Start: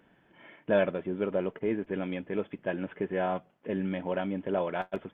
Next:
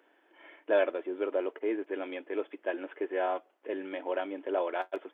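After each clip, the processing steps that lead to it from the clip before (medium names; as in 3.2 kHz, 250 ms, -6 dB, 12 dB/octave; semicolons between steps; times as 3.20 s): elliptic high-pass 310 Hz, stop band 60 dB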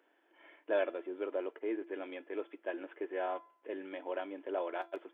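feedback comb 340 Hz, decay 0.57 s, mix 50%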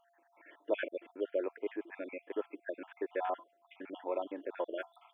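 random holes in the spectrogram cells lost 54%; whistle 690 Hz -73 dBFS; trim +3 dB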